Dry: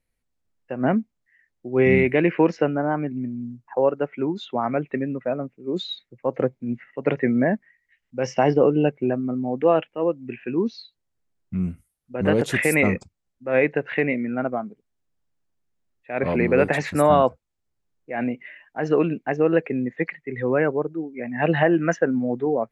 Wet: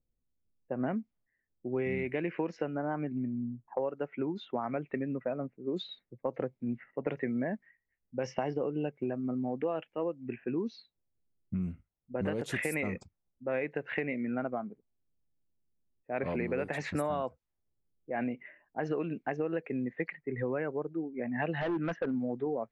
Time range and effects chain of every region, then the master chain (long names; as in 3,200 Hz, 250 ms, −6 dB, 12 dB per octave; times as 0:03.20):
0:21.61–0:22.14: hard clipping −18.5 dBFS + high-frequency loss of the air 230 metres
whole clip: low-pass that shuts in the quiet parts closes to 450 Hz, open at −18.5 dBFS; downward compressor 6 to 1, threshold −27 dBFS; level −3 dB